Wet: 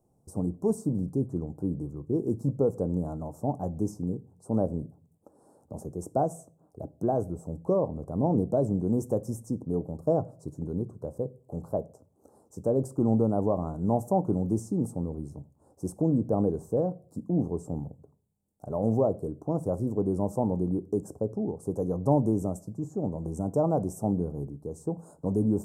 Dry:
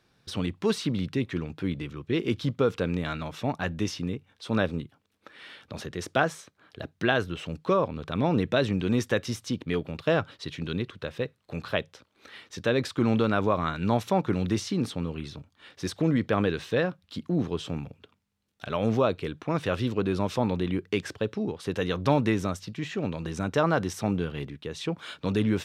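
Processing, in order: elliptic band-stop 800–7800 Hz, stop band 60 dB; reverberation RT60 0.45 s, pre-delay 3 ms, DRR 15 dB

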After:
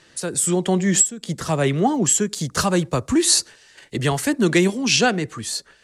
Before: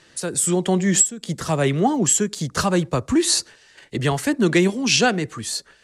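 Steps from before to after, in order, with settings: 2.29–4.78 s: treble shelf 6 kHz +5.5 dB

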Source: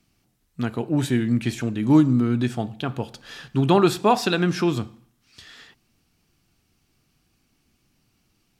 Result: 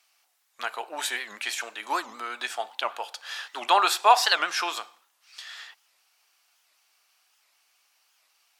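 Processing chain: high-pass 730 Hz 24 dB/octave; warped record 78 rpm, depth 250 cents; trim +4.5 dB

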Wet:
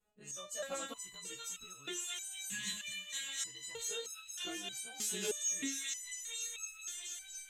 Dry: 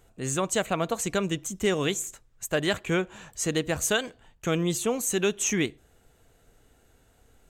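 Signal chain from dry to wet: short-time spectra conjugated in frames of 43 ms; dynamic bell 5.2 kHz, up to +7 dB, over -47 dBFS, Q 0.77; level rider gain up to 14 dB; bass shelf 66 Hz -9 dB; on a send: feedback echo behind a high-pass 234 ms, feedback 83%, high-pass 2.3 kHz, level -3 dB; on the sum: compression 5:1, threshold -19 dBFS, peak gain reduction 10 dB; spectral replace 2.30–3.25 s, 260–1600 Hz before; resonator arpeggio 3.2 Hz 210–1300 Hz; trim -2.5 dB

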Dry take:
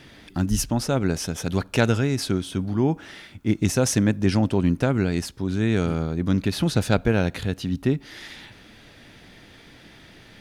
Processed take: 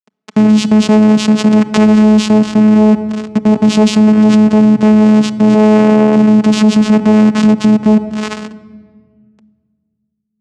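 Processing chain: in parallel at +1 dB: compression 12:1, threshold -34 dBFS, peak gain reduction 21 dB; on the sum: saturation -11.5 dBFS, distortion -17 dB; bit crusher 5-bit; 5.54–6.16 s: ring modulator 400 Hz; vocoder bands 4, saw 214 Hz; on a send at -17 dB: reverberation RT60 1.7 s, pre-delay 5 ms; on the sum: loudness maximiser +22.5 dB; trim -1 dB

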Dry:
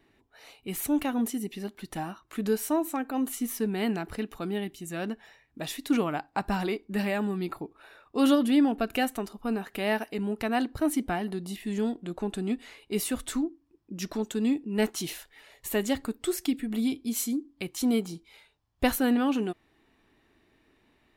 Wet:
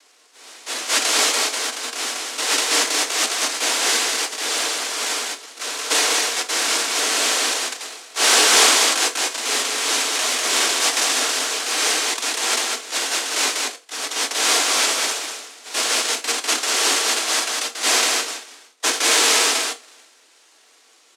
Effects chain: in parallel at +0.5 dB: compression, threshold -34 dBFS, peak gain reduction 15 dB; on the sum: noise-vocoded speech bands 1; steep high-pass 260 Hz 72 dB/octave; delay 197 ms -4 dB; transient shaper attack -5 dB, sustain +7 dB; on a send at -7 dB: reverberation, pre-delay 3 ms; on the sum: trim +4 dB

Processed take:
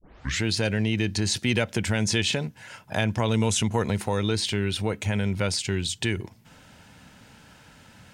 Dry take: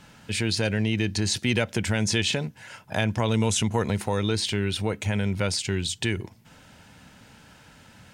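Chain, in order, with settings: tape start-up on the opening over 0.44 s

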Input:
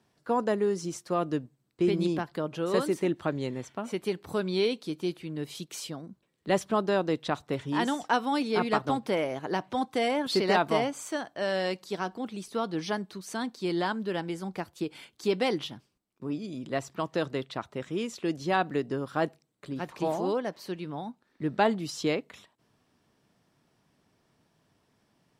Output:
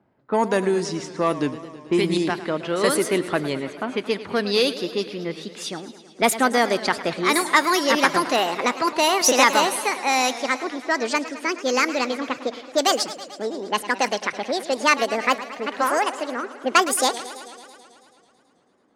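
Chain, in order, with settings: gliding tape speed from 90% -> 178%; in parallel at -4 dB: saturation -22.5 dBFS, distortion -13 dB; on the sum: tilt EQ +2 dB/octave; level-controlled noise filter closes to 920 Hz, open at -21 dBFS; graphic EQ with 31 bands 250 Hz +4 dB, 2 kHz +5 dB, 10 kHz +7 dB; modulated delay 109 ms, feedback 73%, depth 140 cents, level -15 dB; trim +4.5 dB

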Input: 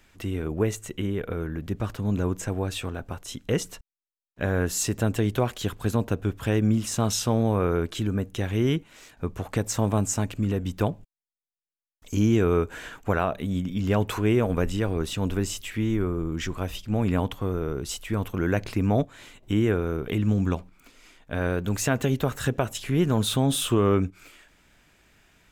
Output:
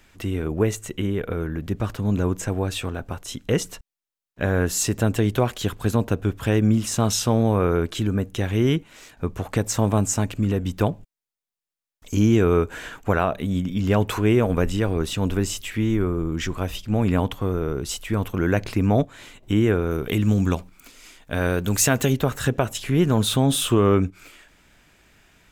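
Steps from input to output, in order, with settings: 19.91–22.13 s: treble shelf 4.1 kHz +9 dB; trim +3.5 dB

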